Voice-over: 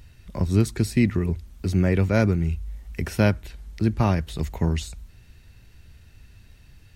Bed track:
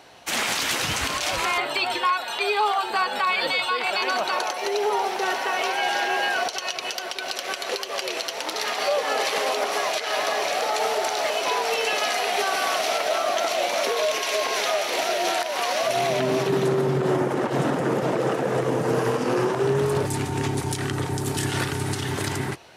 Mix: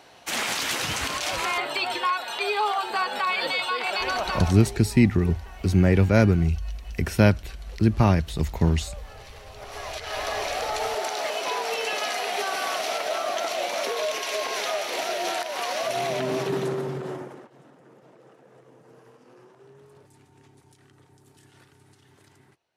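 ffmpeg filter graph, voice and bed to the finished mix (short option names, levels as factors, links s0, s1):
-filter_complex "[0:a]adelay=4000,volume=1.26[s0];[1:a]volume=6.31,afade=t=out:st=4.26:d=0.56:silence=0.1,afade=t=in:st=9.52:d=0.85:silence=0.11885,afade=t=out:st=16.5:d=1:silence=0.0501187[s1];[s0][s1]amix=inputs=2:normalize=0"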